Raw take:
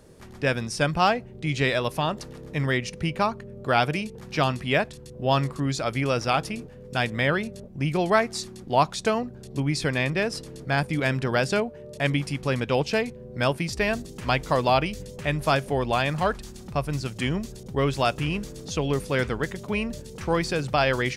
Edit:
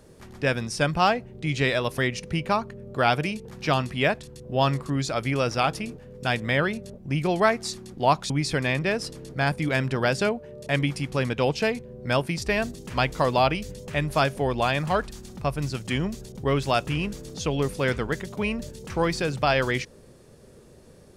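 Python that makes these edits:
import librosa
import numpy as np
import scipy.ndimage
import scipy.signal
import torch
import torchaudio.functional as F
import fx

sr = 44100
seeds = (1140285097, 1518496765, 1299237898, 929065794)

y = fx.edit(x, sr, fx.cut(start_s=1.98, length_s=0.7),
    fx.cut(start_s=9.0, length_s=0.61), tone=tone)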